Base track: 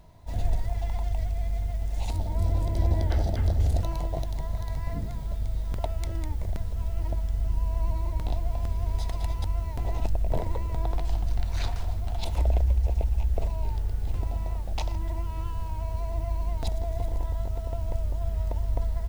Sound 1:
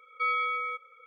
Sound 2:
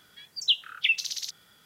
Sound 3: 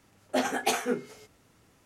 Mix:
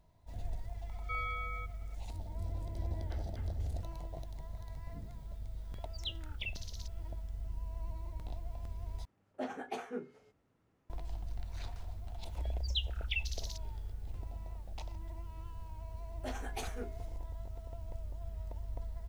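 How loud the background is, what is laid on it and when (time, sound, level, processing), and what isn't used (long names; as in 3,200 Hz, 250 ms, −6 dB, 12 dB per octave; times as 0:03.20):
base track −14 dB
0:00.89: mix in 1 −10.5 dB
0:05.57: mix in 2 −18 dB
0:09.05: overwrite with 3 −11 dB + low-pass filter 1,200 Hz 6 dB per octave
0:12.27: mix in 2 −13 dB
0:15.90: mix in 3 −15.5 dB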